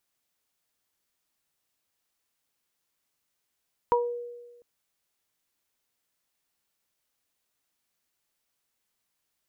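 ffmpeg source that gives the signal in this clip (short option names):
-f lavfi -i "aevalsrc='0.0891*pow(10,-3*t/1.3)*sin(2*PI*480*t)+0.15*pow(10,-3*t/0.24)*sin(2*PI*960*t)':d=0.7:s=44100"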